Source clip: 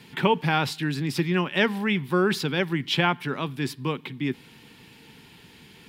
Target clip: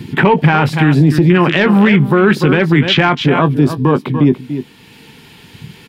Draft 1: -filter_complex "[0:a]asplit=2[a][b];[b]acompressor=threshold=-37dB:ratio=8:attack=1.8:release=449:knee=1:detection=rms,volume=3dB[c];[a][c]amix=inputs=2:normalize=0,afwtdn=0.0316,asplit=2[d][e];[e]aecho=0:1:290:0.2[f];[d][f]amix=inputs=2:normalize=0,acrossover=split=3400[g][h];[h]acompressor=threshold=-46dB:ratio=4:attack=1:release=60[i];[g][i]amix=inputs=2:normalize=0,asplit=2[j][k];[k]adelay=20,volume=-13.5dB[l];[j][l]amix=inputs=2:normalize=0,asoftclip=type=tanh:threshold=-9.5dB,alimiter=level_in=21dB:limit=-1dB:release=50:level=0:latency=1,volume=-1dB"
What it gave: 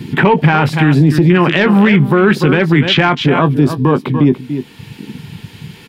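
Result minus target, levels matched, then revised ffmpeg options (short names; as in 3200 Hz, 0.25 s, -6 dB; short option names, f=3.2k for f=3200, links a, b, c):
compressor: peak gain reduction -7.5 dB
-filter_complex "[0:a]asplit=2[a][b];[b]acompressor=threshold=-45.5dB:ratio=8:attack=1.8:release=449:knee=1:detection=rms,volume=3dB[c];[a][c]amix=inputs=2:normalize=0,afwtdn=0.0316,asplit=2[d][e];[e]aecho=0:1:290:0.2[f];[d][f]amix=inputs=2:normalize=0,acrossover=split=3400[g][h];[h]acompressor=threshold=-46dB:ratio=4:attack=1:release=60[i];[g][i]amix=inputs=2:normalize=0,asplit=2[j][k];[k]adelay=20,volume=-13.5dB[l];[j][l]amix=inputs=2:normalize=0,asoftclip=type=tanh:threshold=-9.5dB,alimiter=level_in=21dB:limit=-1dB:release=50:level=0:latency=1,volume=-1dB"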